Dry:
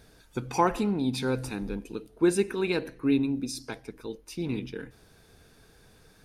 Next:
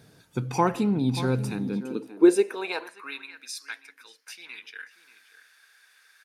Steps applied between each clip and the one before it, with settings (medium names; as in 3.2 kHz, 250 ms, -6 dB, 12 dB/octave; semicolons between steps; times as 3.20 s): echo from a far wall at 100 m, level -13 dB; high-pass sweep 130 Hz -> 1.7 kHz, 1.56–3.27 s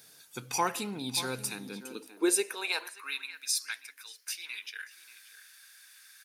tilt EQ +4.5 dB/octave; trim -4.5 dB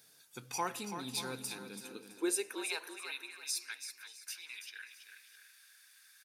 feedback delay 331 ms, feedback 33%, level -9 dB; trim -7 dB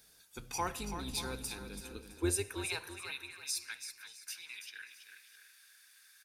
octave divider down 2 oct, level +1 dB; on a send at -21 dB: reverberation RT60 0.65 s, pre-delay 46 ms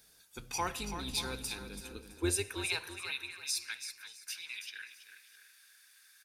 dynamic bell 3.2 kHz, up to +5 dB, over -52 dBFS, Q 0.77